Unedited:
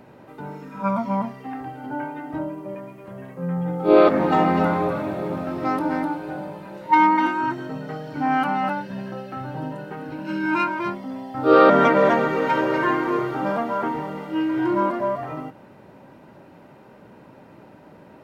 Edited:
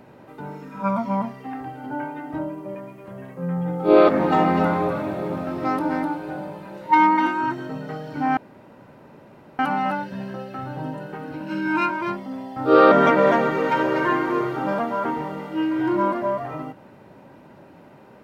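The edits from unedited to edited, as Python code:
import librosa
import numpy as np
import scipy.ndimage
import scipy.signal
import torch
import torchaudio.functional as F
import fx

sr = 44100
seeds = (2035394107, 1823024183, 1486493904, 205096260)

y = fx.edit(x, sr, fx.insert_room_tone(at_s=8.37, length_s=1.22), tone=tone)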